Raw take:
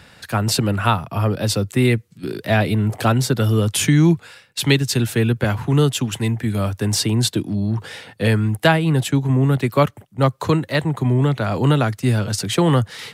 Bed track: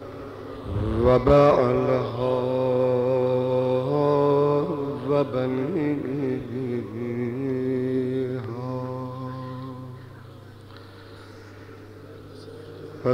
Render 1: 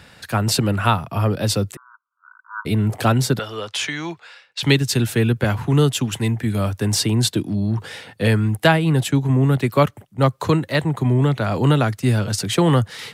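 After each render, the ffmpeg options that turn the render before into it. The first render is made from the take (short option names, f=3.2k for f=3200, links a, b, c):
-filter_complex "[0:a]asplit=3[a][b][c];[a]afade=t=out:st=1.75:d=0.02[d];[b]asuperpass=centerf=1200:order=20:qfactor=2,afade=t=in:st=1.75:d=0.02,afade=t=out:st=2.65:d=0.02[e];[c]afade=t=in:st=2.65:d=0.02[f];[d][e][f]amix=inputs=3:normalize=0,asettb=1/sr,asplit=3[g][h][i];[g]atrim=end=3.394[j];[h]atrim=start=3.39:end=4.63,asetpts=PTS-STARTPTS,afade=t=in:d=0.004:c=qsin,afade=t=out:st=1.236:d=0.004:c=qsin,acrossover=split=500 6200:gain=0.0794 1 0.0891[k][l][m];[k][l][m]amix=inputs=3:normalize=0[n];[i]atrim=start=4.626[o];[j][n]acrossfade=d=0.004:c1=hsin:c2=qsin[p];[p][o]acrossfade=d=0.004:c1=qsin:c2=hsin"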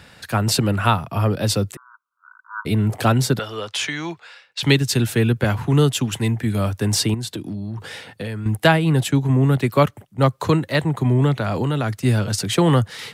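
-filter_complex "[0:a]asettb=1/sr,asplit=3[a][b][c];[a]atrim=end=7.144[d];[b]atrim=start=7.14:end=8.46,asetpts=PTS-STARTPTS,afade=t=in:d=0.004:c=qsin,afade=t=out:st=1.316:d=0.004:c=qsin,acompressor=threshold=-25dB:ratio=6:attack=3.2:release=140:knee=1:detection=peak[e];[c]atrim=start=8.456[f];[d][e]acrossfade=d=0.004:c1=hsin:c2=qsin[g];[g][f]acrossfade=d=0.004:c1=qsin:c2=hsin,asettb=1/sr,asplit=3[h][i][j];[h]atrim=end=11.384[k];[i]atrim=start=11.38:end=12.05,asetpts=PTS-STARTPTS,afade=t=in:d=0.004:c=qsin,afade=t=out:st=0.666:d=0.004:c=qsin,acompressor=threshold=-17dB:ratio=6:attack=3.2:release=140:knee=1:detection=peak[l];[j]atrim=start=12.046[m];[k][l]acrossfade=d=0.004:c1=hsin:c2=qsin[n];[n][m]acrossfade=d=0.004:c1=qsin:c2=hsin"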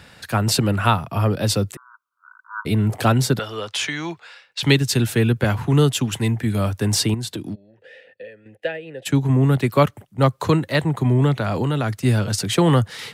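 -filter_complex "[0:a]asplit=3[a][b][c];[a]afade=t=out:st=7.54:d=0.02[d];[b]asplit=3[e][f][g];[e]bandpass=f=530:t=q:w=8,volume=0dB[h];[f]bandpass=f=1.84k:t=q:w=8,volume=-6dB[i];[g]bandpass=f=2.48k:t=q:w=8,volume=-9dB[j];[h][i][j]amix=inputs=3:normalize=0,afade=t=in:st=7.54:d=0.02,afade=t=out:st=9.05:d=0.02[k];[c]afade=t=in:st=9.05:d=0.02[l];[d][k][l]amix=inputs=3:normalize=0"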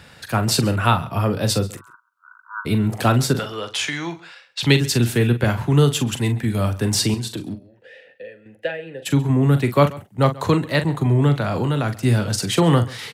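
-filter_complex "[0:a]asplit=2[a][b];[b]adelay=42,volume=-10dB[c];[a][c]amix=inputs=2:normalize=0,aecho=1:1:135:0.0891"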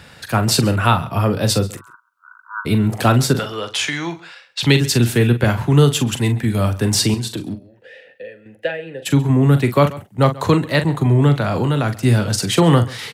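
-af "volume=3dB,alimiter=limit=-2dB:level=0:latency=1"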